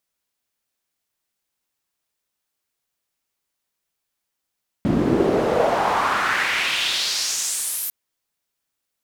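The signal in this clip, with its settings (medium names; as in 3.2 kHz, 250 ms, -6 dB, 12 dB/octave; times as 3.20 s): swept filtered noise pink, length 3.05 s bandpass, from 220 Hz, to 13 kHz, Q 2.4, exponential, gain ramp -7 dB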